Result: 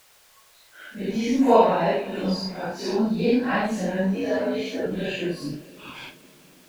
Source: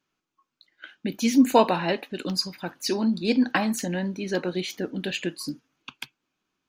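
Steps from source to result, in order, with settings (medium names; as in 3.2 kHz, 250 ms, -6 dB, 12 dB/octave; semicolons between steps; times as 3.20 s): phase randomisation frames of 200 ms; added noise blue -48 dBFS; resonant low shelf 390 Hz -7 dB, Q 1.5; in parallel at -2 dB: compression, threshold -35 dBFS, peak gain reduction 20 dB; on the sum: RIAA curve playback; 4.15–4.86 s: frequency shift +73 Hz; on a send at -17 dB: reverberation RT60 4.7 s, pre-delay 3 ms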